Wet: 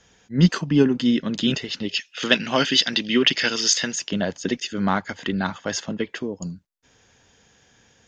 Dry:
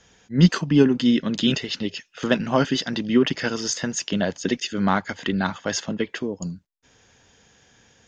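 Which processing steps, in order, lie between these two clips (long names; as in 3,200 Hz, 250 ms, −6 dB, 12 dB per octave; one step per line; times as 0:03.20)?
0:01.89–0:03.96: meter weighting curve D
level −1 dB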